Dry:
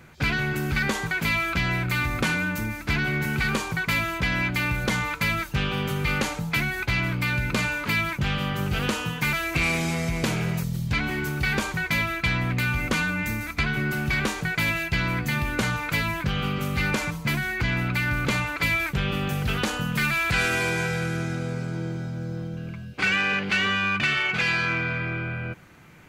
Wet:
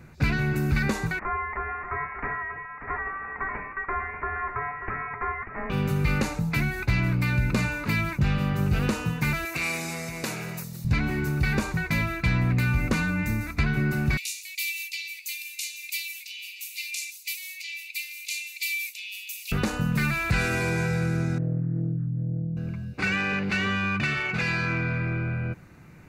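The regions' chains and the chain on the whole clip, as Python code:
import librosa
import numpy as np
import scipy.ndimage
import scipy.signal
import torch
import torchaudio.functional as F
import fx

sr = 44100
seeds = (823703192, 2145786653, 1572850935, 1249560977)

y = fx.chain(x, sr, fx.highpass(hz=1300.0, slope=24),
    fx.echo_single(ms=589, db=-9.5),
    fx.freq_invert(carrier_hz=3400), at=(1.19, 5.7))
y = fx.chain(y, sr, fx.highpass(hz=680.0, slope=6),
    fx.high_shelf(hz=7600.0, db=7.0), at=(9.45, 10.85))
y = fx.chain(y, sr, fx.steep_highpass(hz=2300.0, slope=72),
    fx.high_shelf(hz=4500.0, db=11.0), at=(14.17, 19.52))
y = fx.chain(y, sr, fx.spec_expand(power=2.1),
    fx.brickwall_lowpass(high_hz=9000.0),
    fx.doppler_dist(depth_ms=0.46), at=(21.38, 22.57))
y = fx.low_shelf(y, sr, hz=360.0, db=8.5)
y = fx.notch(y, sr, hz=3200.0, q=5.2)
y = y * librosa.db_to_amplitude(-4.0)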